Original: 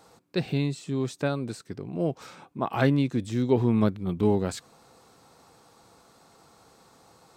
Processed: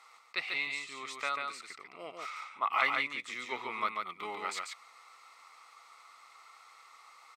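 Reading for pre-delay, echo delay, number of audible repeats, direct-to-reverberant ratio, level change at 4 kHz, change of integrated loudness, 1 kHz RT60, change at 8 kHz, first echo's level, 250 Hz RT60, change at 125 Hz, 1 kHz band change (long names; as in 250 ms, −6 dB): no reverb audible, 142 ms, 1, no reverb audible, +1.0 dB, −8.0 dB, no reverb audible, −3.5 dB, −4.0 dB, no reverb audible, below −35 dB, +1.0 dB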